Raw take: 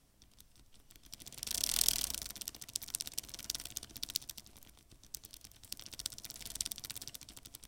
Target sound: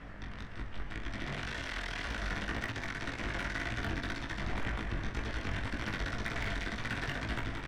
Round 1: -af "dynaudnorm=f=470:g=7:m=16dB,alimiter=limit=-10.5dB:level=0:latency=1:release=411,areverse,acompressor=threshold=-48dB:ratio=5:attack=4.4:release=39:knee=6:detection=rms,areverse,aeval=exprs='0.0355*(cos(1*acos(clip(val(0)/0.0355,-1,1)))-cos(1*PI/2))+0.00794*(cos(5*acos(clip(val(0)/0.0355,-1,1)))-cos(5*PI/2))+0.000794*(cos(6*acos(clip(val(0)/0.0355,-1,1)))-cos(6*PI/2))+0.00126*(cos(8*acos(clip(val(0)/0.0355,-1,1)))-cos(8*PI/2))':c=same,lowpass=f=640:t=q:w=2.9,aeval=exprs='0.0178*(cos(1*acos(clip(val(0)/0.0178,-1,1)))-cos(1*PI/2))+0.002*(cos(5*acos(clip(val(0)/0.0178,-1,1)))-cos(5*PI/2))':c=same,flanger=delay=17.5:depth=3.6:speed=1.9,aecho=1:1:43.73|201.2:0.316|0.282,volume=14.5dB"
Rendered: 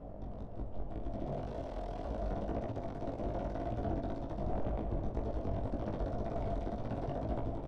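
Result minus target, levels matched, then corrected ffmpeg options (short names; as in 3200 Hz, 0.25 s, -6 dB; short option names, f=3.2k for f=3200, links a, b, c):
2000 Hz band -19.5 dB
-af "dynaudnorm=f=470:g=7:m=16dB,alimiter=limit=-10.5dB:level=0:latency=1:release=411,areverse,acompressor=threshold=-48dB:ratio=5:attack=4.4:release=39:knee=6:detection=rms,areverse,aeval=exprs='0.0355*(cos(1*acos(clip(val(0)/0.0355,-1,1)))-cos(1*PI/2))+0.00794*(cos(5*acos(clip(val(0)/0.0355,-1,1)))-cos(5*PI/2))+0.000794*(cos(6*acos(clip(val(0)/0.0355,-1,1)))-cos(6*PI/2))+0.00126*(cos(8*acos(clip(val(0)/0.0355,-1,1)))-cos(8*PI/2))':c=same,lowpass=f=1.8k:t=q:w=2.9,aeval=exprs='0.0178*(cos(1*acos(clip(val(0)/0.0178,-1,1)))-cos(1*PI/2))+0.002*(cos(5*acos(clip(val(0)/0.0178,-1,1)))-cos(5*PI/2))':c=same,flanger=delay=17.5:depth=3.6:speed=1.9,aecho=1:1:43.73|201.2:0.316|0.282,volume=14.5dB"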